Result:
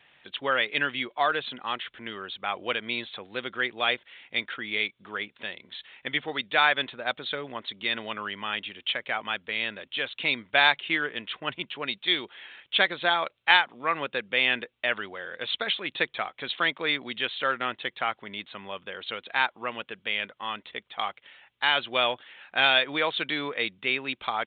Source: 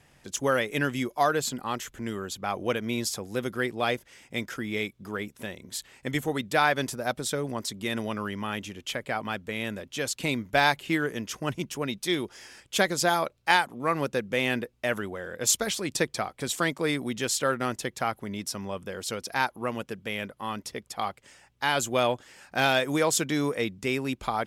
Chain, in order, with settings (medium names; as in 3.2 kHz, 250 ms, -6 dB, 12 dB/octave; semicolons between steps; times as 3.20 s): tilt EQ +4.5 dB/octave; resampled via 8 kHz